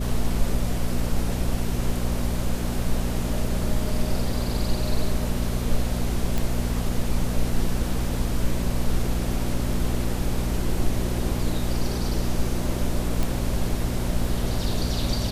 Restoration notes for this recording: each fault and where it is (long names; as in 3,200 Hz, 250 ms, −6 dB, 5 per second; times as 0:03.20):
mains hum 60 Hz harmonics 4 −28 dBFS
0:06.38: click
0:13.23: click